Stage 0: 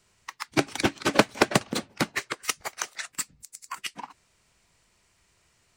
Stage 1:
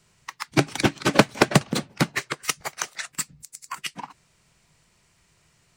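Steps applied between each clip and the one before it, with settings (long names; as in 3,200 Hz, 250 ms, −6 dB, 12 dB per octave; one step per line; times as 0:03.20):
parametric band 150 Hz +9.5 dB 0.59 octaves
level +2.5 dB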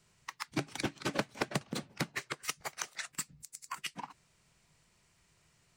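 downward compressor 2.5 to 1, threshold −28 dBFS, peak gain reduction 12.5 dB
level −6.5 dB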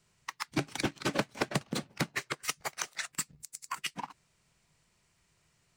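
leveller curve on the samples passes 1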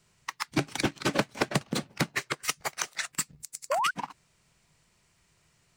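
sound drawn into the spectrogram rise, 0:03.70–0:03.91, 510–1,600 Hz −31 dBFS
level +4 dB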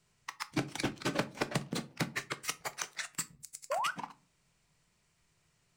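convolution reverb RT60 0.35 s, pre-delay 7 ms, DRR 12 dB
level −6.5 dB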